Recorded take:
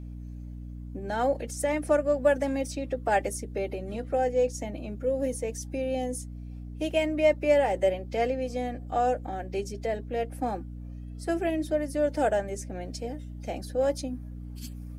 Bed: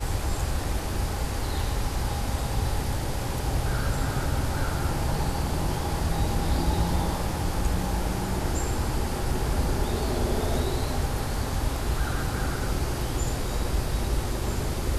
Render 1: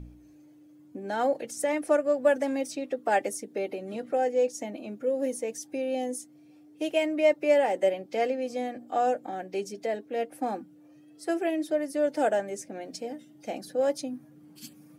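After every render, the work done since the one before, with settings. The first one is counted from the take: de-hum 60 Hz, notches 4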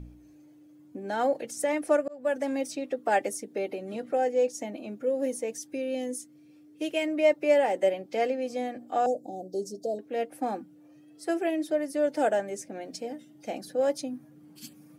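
2.08–2.66 s: fade in equal-power; 5.59–7.08 s: peaking EQ 770 Hz -10 dB 0.49 oct; 9.06–9.99 s: inverse Chebyshev band-stop 1.2–2.6 kHz, stop band 50 dB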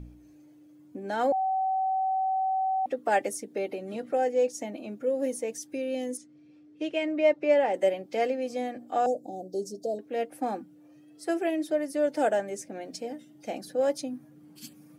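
1.32–2.86 s: bleep 762 Hz -24 dBFS; 6.17–7.74 s: distance through air 110 m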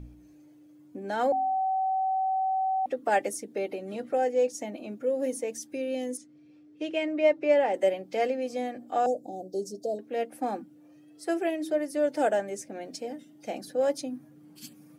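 de-hum 45.39 Hz, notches 7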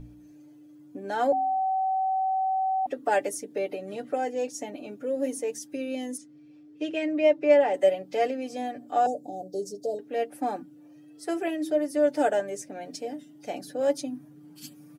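band-stop 2.2 kHz, Q 22; comb 6.9 ms, depth 55%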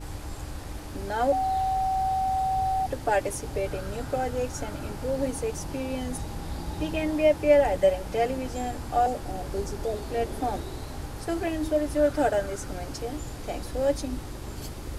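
add bed -9.5 dB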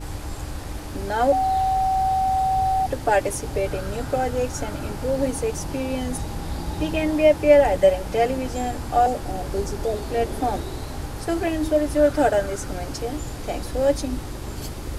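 trim +5 dB

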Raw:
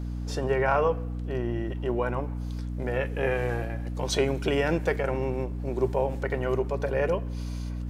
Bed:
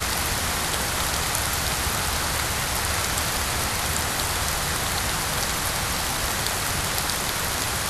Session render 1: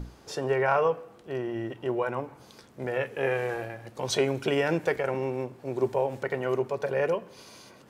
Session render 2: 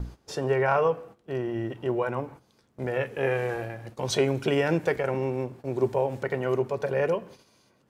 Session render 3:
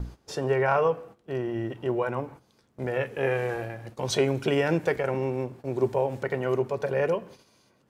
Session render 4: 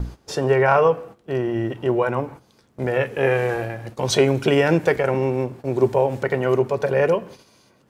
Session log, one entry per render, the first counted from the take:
hum notches 60/120/180/240/300 Hz
gate -46 dBFS, range -14 dB; bass shelf 230 Hz +6 dB
no audible change
trim +7 dB

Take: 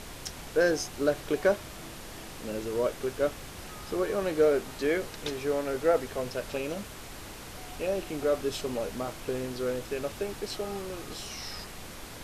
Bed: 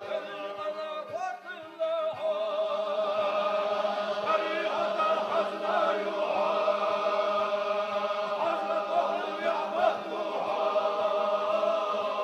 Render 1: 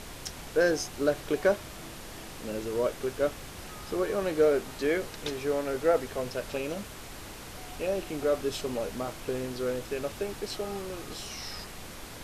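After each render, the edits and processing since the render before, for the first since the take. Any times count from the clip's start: no audible change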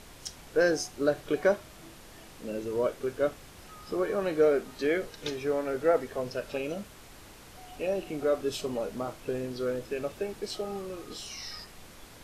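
noise print and reduce 7 dB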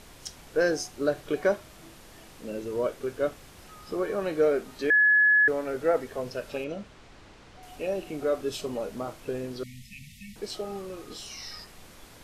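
4.90–5.48 s: bleep 1.7 kHz -16.5 dBFS; 6.64–7.63 s: distance through air 100 m; 9.63–10.36 s: brick-wall FIR band-stop 240–1800 Hz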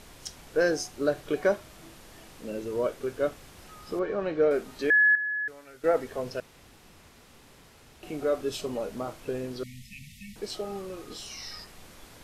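3.99–4.51 s: distance through air 170 m; 5.15–5.84 s: amplifier tone stack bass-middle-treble 5-5-5; 6.40–8.03 s: room tone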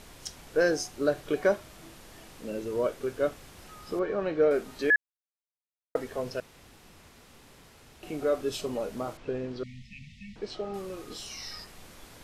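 4.96–5.95 s: mute; 9.17–10.74 s: distance through air 140 m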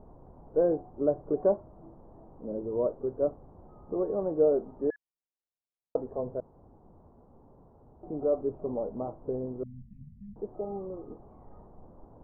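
steep low-pass 950 Hz 36 dB/octave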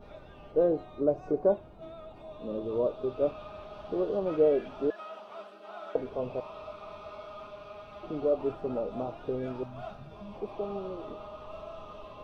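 add bed -17 dB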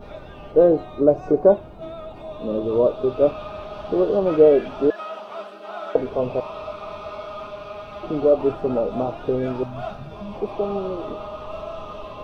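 trim +10.5 dB

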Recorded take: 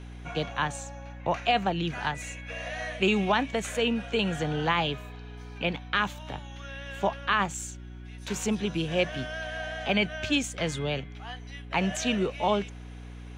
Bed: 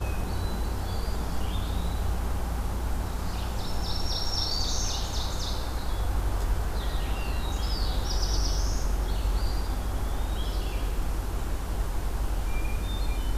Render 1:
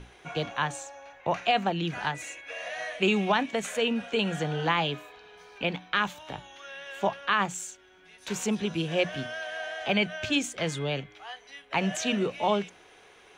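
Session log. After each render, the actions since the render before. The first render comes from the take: hum notches 60/120/180/240/300 Hz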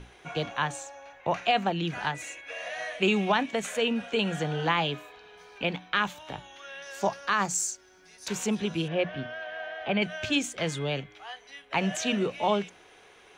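6.82–8.28 s: resonant high shelf 4 kHz +6.5 dB, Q 3; 8.88–10.02 s: distance through air 290 m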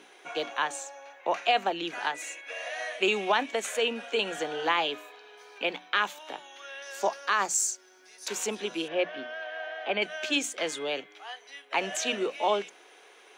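high-pass 300 Hz 24 dB/octave; treble shelf 6.5 kHz +4 dB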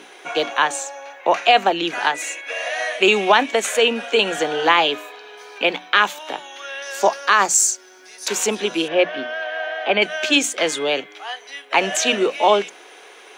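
trim +11 dB; peak limiter -2 dBFS, peak gain reduction 1.5 dB

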